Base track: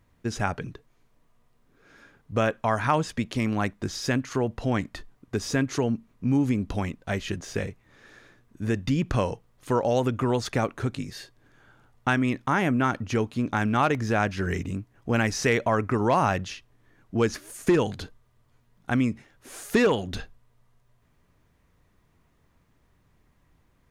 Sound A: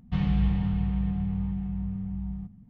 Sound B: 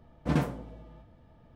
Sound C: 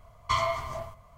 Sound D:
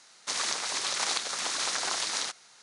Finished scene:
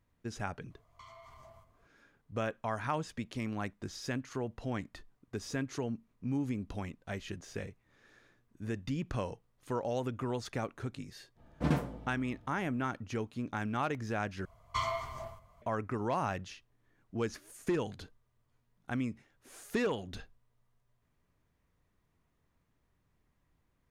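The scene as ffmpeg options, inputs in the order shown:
-filter_complex "[3:a]asplit=2[a][b];[0:a]volume=-11dB[c];[a]acompressor=threshold=-37dB:ratio=6:attack=3.2:release=140:knee=1:detection=peak[d];[c]asplit=2[e][f];[e]atrim=end=14.454[g];[b]atrim=end=1.17,asetpts=PTS-STARTPTS,volume=-7dB[h];[f]atrim=start=15.616[i];[d]atrim=end=1.17,asetpts=PTS-STARTPTS,volume=-14dB,afade=t=in:d=0.004:c=hsin,afade=t=out:st=1.166:d=0.004:c=hsin,adelay=700[j];[2:a]atrim=end=1.55,asetpts=PTS-STARTPTS,volume=-3dB,afade=t=in:d=0.05,afade=t=out:st=1.5:d=0.05,adelay=11350[k];[g][h]acrossfade=d=0.004:c1=hsin:c2=hsin[l];[l][i]acrossfade=d=0.004:c1=hsin:c2=hsin[m];[m][j][k]amix=inputs=3:normalize=0"

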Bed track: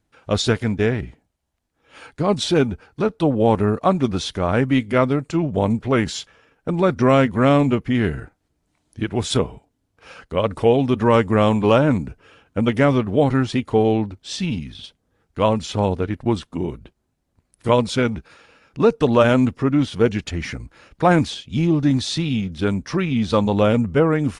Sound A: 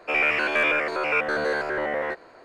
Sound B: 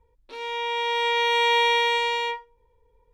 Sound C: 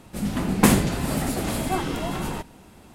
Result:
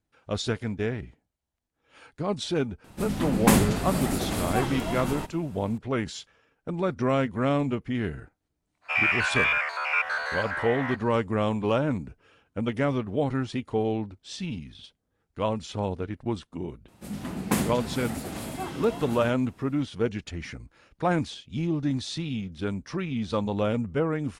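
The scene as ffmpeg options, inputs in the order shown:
-filter_complex "[3:a]asplit=2[a][b];[0:a]volume=-9.5dB[c];[1:a]highpass=f=810:w=0.5412,highpass=f=810:w=1.3066[d];[b]highpass=63[e];[a]atrim=end=2.94,asetpts=PTS-STARTPTS,volume=-2.5dB,afade=t=in:d=0.004:c=hsin,afade=t=out:st=2.936:d=0.004:c=hsin,adelay=2840[f];[d]atrim=end=2.44,asetpts=PTS-STARTPTS,volume=-1dB,afade=t=in:d=0.05,afade=t=out:st=2.39:d=0.05,adelay=8810[g];[e]atrim=end=2.94,asetpts=PTS-STARTPTS,volume=-8.5dB,afade=t=in:d=0.004:c=hsin,afade=t=out:st=2.936:d=0.004:c=hsin,adelay=16880[h];[c][f][g][h]amix=inputs=4:normalize=0"

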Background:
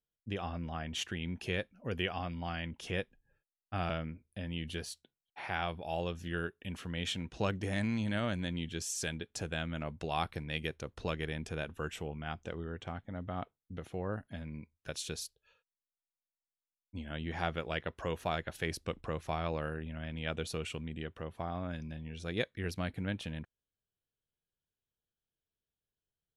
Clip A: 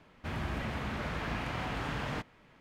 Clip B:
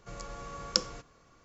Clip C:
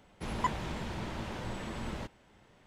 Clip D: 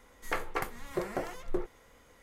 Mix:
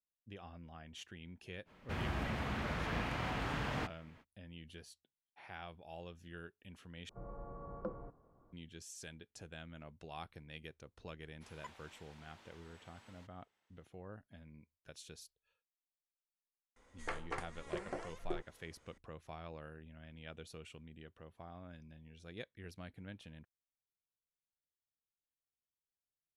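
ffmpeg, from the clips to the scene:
-filter_complex "[0:a]volume=-13.5dB[a];[2:a]lowpass=f=1k:w=0.5412,lowpass=f=1k:w=1.3066[b];[3:a]highpass=f=1.4k:p=1[c];[4:a]aresample=22050,aresample=44100[d];[a]asplit=2[e][f];[e]atrim=end=7.094[g];[b]atrim=end=1.44,asetpts=PTS-STARTPTS,volume=-4dB[h];[f]atrim=start=8.526[i];[1:a]atrim=end=2.6,asetpts=PTS-STARTPTS,volume=-2.5dB,afade=t=in:d=0.05,afade=t=out:st=2.55:d=0.05,adelay=1650[j];[c]atrim=end=2.66,asetpts=PTS-STARTPTS,volume=-15.5dB,afade=t=in:d=0.004:c=hsin,afade=t=out:st=2.656:d=0.004:c=hsin,adelay=11200[k];[d]atrim=end=2.22,asetpts=PTS-STARTPTS,volume=-8.5dB,afade=t=in:d=0.004:c=hsin,afade=t=out:st=2.216:d=0.004:c=hsin,adelay=16760[l];[g][h]acrossfade=d=0.004:c1=hsin:c2=hsin[m];[m][i]acrossfade=d=0.004:c1=hsin:c2=hsin[n];[n][j][k][l]amix=inputs=4:normalize=0"

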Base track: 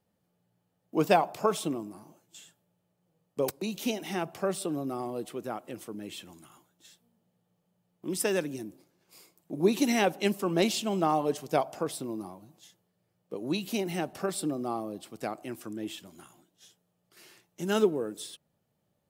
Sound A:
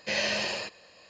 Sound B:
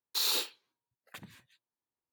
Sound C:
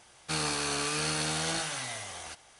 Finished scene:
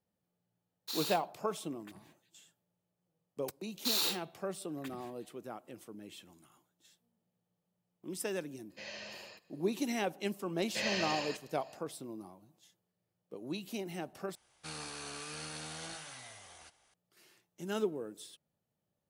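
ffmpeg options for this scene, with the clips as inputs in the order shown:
-filter_complex "[2:a]asplit=2[a][b];[1:a]asplit=2[c][d];[0:a]volume=-9dB[e];[b]bandreject=f=169.2:t=h:w=4,bandreject=f=338.4:t=h:w=4,bandreject=f=507.6:t=h:w=4,bandreject=f=676.8:t=h:w=4,bandreject=f=846:t=h:w=4,bandreject=f=1.0152k:t=h:w=4,bandreject=f=1.1844k:t=h:w=4,bandreject=f=1.3536k:t=h:w=4,bandreject=f=1.5228k:t=h:w=4,bandreject=f=1.692k:t=h:w=4,bandreject=f=1.8612k:t=h:w=4,bandreject=f=2.0304k:t=h:w=4,bandreject=f=2.1996k:t=h:w=4,bandreject=f=2.3688k:t=h:w=4,bandreject=f=2.538k:t=h:w=4,bandreject=f=2.7072k:t=h:w=4,bandreject=f=2.8764k:t=h:w=4,bandreject=f=3.0456k:t=h:w=4,bandreject=f=3.2148k:t=h:w=4,bandreject=f=3.384k:t=h:w=4,bandreject=f=3.5532k:t=h:w=4,bandreject=f=3.7224k:t=h:w=4,bandreject=f=3.8916k:t=h:w=4,bandreject=f=4.0608k:t=h:w=4,bandreject=f=4.23k:t=h:w=4[f];[3:a]aresample=32000,aresample=44100[g];[e]asplit=2[h][i];[h]atrim=end=14.354[j];[g]atrim=end=2.59,asetpts=PTS-STARTPTS,volume=-13dB[k];[i]atrim=start=16.936[l];[a]atrim=end=2.12,asetpts=PTS-STARTPTS,volume=-9dB,afade=t=in:d=0.004:c=hsin,afade=t=out:st=2.116:d=0.004:c=hsin,adelay=730[m];[f]atrim=end=2.12,asetpts=PTS-STARTPTS,volume=-2dB,afade=t=in:d=0.004:c=hsin,afade=t=out:st=2.116:d=0.004:c=hsin,adelay=3700[n];[c]atrim=end=1.09,asetpts=PTS-STARTPTS,volume=-17.5dB,afade=t=in:d=0.004:c=hsin,afade=t=out:st=1.086:d=0.004:c=hsin,adelay=8700[o];[d]atrim=end=1.09,asetpts=PTS-STARTPTS,volume=-6.5dB,afade=t=in:d=0.004:c=hsin,afade=t=out:st=1.086:d=0.004:c=hsin,adelay=10680[p];[j][k]acrossfade=d=0.004:c1=hsin:c2=hsin[q];[q][l]acrossfade=d=0.004:c1=hsin:c2=hsin[r];[r][m][n][o][p]amix=inputs=5:normalize=0"

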